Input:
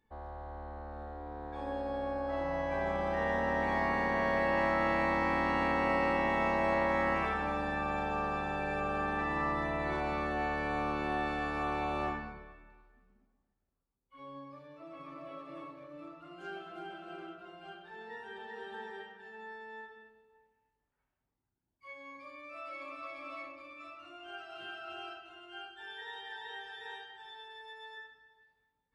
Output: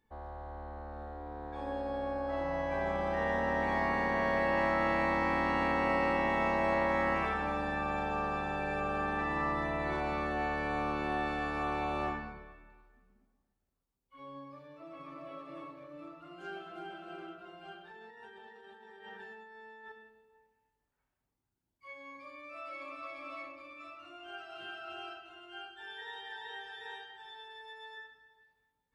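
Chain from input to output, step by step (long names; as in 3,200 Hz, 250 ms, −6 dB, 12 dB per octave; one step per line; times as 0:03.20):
0:17.91–0:19.92: compressor whose output falls as the input rises −52 dBFS, ratio −1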